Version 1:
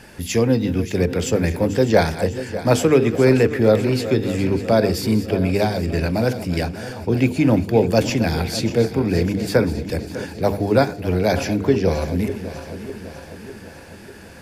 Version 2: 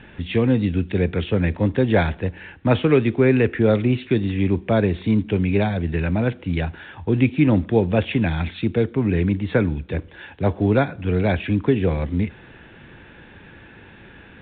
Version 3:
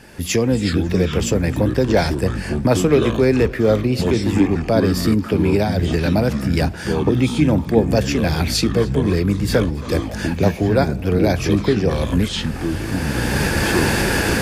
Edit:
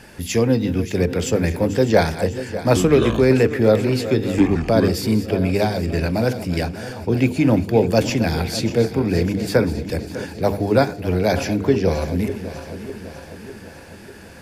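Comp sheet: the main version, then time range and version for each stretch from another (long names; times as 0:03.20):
1
0:02.76–0:03.30: punch in from 3
0:04.38–0:04.88: punch in from 3
not used: 2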